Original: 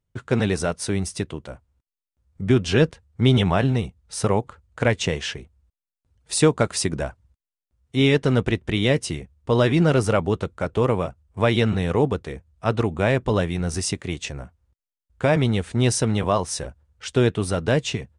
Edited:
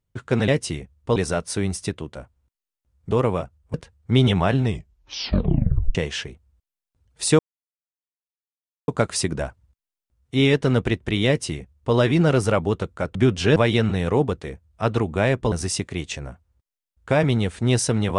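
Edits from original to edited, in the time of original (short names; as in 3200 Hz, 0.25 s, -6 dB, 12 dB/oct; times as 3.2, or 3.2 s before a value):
2.43–2.84 swap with 10.76–11.39
3.72 tape stop 1.33 s
6.49 insert silence 1.49 s
8.88–9.56 copy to 0.48
13.35–13.65 cut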